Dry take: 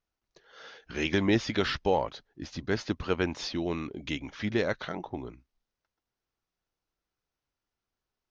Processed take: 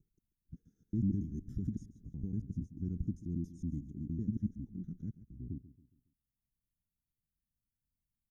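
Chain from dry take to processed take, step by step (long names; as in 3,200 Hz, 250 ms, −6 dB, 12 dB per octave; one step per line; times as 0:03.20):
slices reordered back to front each 93 ms, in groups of 5
brickwall limiter −19 dBFS, peak gain reduction 6 dB
inverse Chebyshev band-stop filter 540–4,700 Hz, stop band 50 dB
on a send: repeating echo 138 ms, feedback 42%, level −16 dB
on the sum: level +1.5 dB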